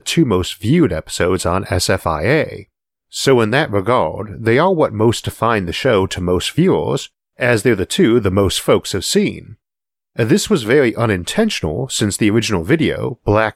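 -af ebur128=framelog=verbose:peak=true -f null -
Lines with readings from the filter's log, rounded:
Integrated loudness:
  I:         -15.9 LUFS
  Threshold: -26.2 LUFS
Loudness range:
  LRA:         1.4 LU
  Threshold: -36.3 LUFS
  LRA low:   -17.0 LUFS
  LRA high:  -15.6 LUFS
True peak:
  Peak:       -1.5 dBFS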